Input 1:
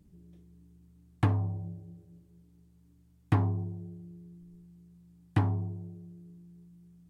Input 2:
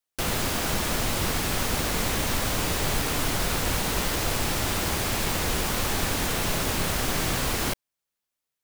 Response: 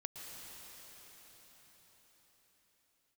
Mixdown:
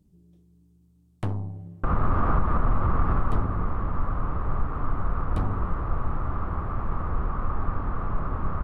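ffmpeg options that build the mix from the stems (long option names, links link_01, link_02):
-filter_complex "[0:a]equalizer=frequency=1900:width_type=o:width=0.97:gain=-7.5,aeval=exprs='(tanh(17.8*val(0)+0.75)-tanh(0.75))/17.8':channel_layout=same,volume=2.5dB,asplit=2[link_01][link_02];[link_02]volume=-22.5dB[link_03];[1:a]lowpass=frequency=1200:width_type=q:width=7,aemphasis=mode=reproduction:type=riaa,adelay=1650,volume=-1.5dB,afade=type=out:start_time=3.06:duration=0.4:silence=0.281838[link_04];[2:a]atrim=start_sample=2205[link_05];[link_03][link_05]afir=irnorm=-1:irlink=0[link_06];[link_01][link_04][link_06]amix=inputs=3:normalize=0,alimiter=limit=-13dB:level=0:latency=1:release=133"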